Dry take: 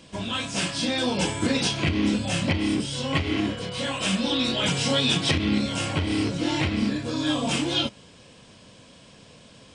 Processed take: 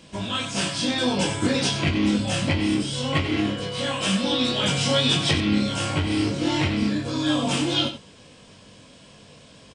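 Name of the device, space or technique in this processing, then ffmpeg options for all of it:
slapback doubling: -filter_complex "[0:a]asplit=3[link_01][link_02][link_03];[link_02]adelay=20,volume=-6dB[link_04];[link_03]adelay=93,volume=-10dB[link_05];[link_01][link_04][link_05]amix=inputs=3:normalize=0"

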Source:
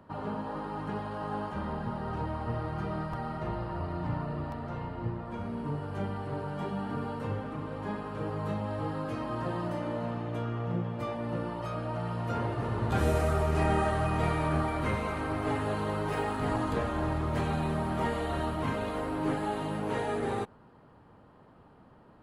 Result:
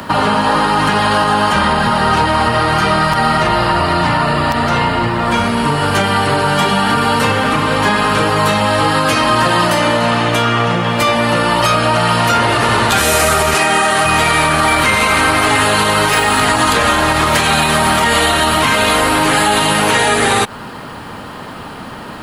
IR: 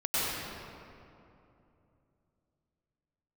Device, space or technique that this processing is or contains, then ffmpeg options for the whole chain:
mastering chain: -filter_complex "[0:a]equalizer=frequency=230:width_type=o:width=0.77:gain=4,acrossover=split=150|480[link_01][link_02][link_03];[link_01]acompressor=threshold=-42dB:ratio=4[link_04];[link_02]acompressor=threshold=-41dB:ratio=4[link_05];[link_03]acompressor=threshold=-35dB:ratio=4[link_06];[link_04][link_05][link_06]amix=inputs=3:normalize=0,acompressor=threshold=-38dB:ratio=2.5,asoftclip=type=tanh:threshold=-25dB,tiltshelf=frequency=1400:gain=-10,alimiter=level_in=35dB:limit=-1dB:release=50:level=0:latency=1,asettb=1/sr,asplit=3[link_07][link_08][link_09];[link_07]atrim=end=13.544[link_10];[link_08]atrim=start=13.54:end=14.05,asetpts=PTS-STARTPTS,afade=type=in:duration=0.004:curve=qsin,afade=type=out:start_time=0.506:duration=0.004:curve=qsin,highpass=170[link_11];[link_09]atrim=start=14.046[link_12];[link_10][link_11]acrossfade=duration=0.004:curve1=hsin:curve2=qsin[link_13];[link_13][link_12]acrossfade=duration=0.004:curve1=qsin:curve2=hsin,volume=-2dB"

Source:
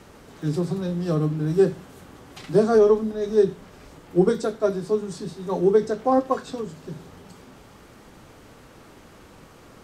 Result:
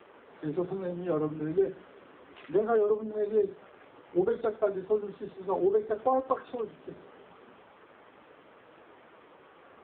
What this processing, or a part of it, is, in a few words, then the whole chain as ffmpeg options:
voicemail: -filter_complex "[0:a]asettb=1/sr,asplit=3[link_01][link_02][link_03];[link_01]atrim=end=1.584[link_04];[link_02]atrim=start=1.58:end=3.04,asetpts=PTS-STARTPTS,afade=type=in:duration=0.004:curve=qsin,afade=type=out:start_time=1.456:duration=0.004:curve=qsin,equalizer=frequency=800:width=6.6:gain=-6[link_05];[link_03]atrim=start=3.036[link_06];[link_04][link_05]acrossfade=duration=0.004:curve1=hsin:curve2=qsin[link_07];[link_07][link_06]acrossfade=duration=0.004:curve1=qsin:curve2=hsin,highpass=370,lowpass=3200,acompressor=threshold=-21dB:ratio=8" -ar 8000 -c:a libopencore_amrnb -b:a 5900

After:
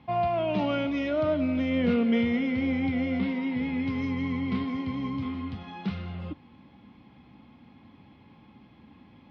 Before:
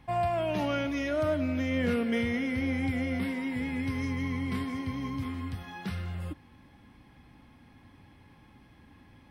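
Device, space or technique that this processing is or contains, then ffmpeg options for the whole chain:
guitar cabinet: -af "highpass=87,equalizer=frequency=100:width_type=q:width=4:gain=-4,equalizer=frequency=210:width_type=q:width=4:gain=6,equalizer=frequency=1700:width_type=q:width=4:gain=-9,lowpass=frequency=4200:width=0.5412,lowpass=frequency=4200:width=1.3066,volume=2.5dB"

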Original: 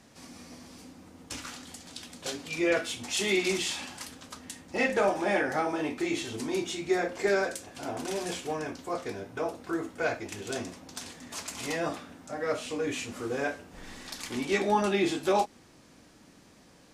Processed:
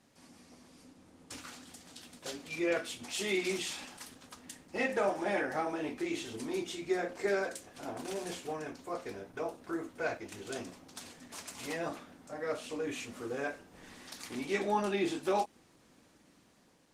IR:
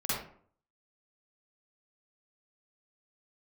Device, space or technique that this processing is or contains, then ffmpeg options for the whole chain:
video call: -af "highpass=frequency=110:poles=1,dynaudnorm=framelen=390:gausssize=5:maxgain=3.5dB,volume=-8dB" -ar 48000 -c:a libopus -b:a 20k

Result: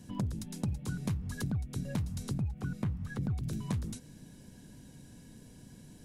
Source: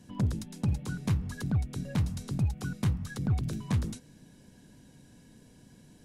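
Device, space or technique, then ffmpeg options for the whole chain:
ASMR close-microphone chain: -filter_complex "[0:a]asettb=1/sr,asplit=3[link_01][link_02][link_03];[link_01]atrim=end=2.334[link_04];[link_02]atrim=start=2.33:end=3.23,asetpts=PTS-STARTPTS,afade=type=in:duration=0.004:curve=qsin,afade=type=out:start_time=0.896:duration=0.004:curve=qsin,acrossover=split=2700[link_05][link_06];[link_06]acompressor=threshold=-60dB:ratio=4:attack=1:release=60[link_07];[link_05][link_07]amix=inputs=2:normalize=0[link_08];[link_03]atrim=start=3.226[link_09];[link_04][link_08]acrossfade=duration=0.004:curve1=hsin:curve2=qsin[link_10];[link_10][link_09]acrossfade=duration=0.004:curve1=qsin:curve2=hsin,lowshelf=frequency=230:gain=5,acompressor=threshold=-31dB:ratio=6,highshelf=frequency=6600:gain=6"

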